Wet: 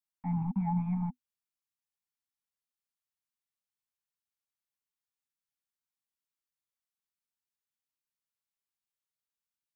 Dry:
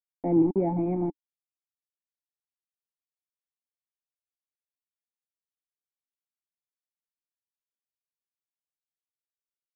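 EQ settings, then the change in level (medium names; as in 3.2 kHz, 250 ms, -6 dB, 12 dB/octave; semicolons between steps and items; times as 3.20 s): Chebyshev band-stop 250–800 Hz, order 5; 0.0 dB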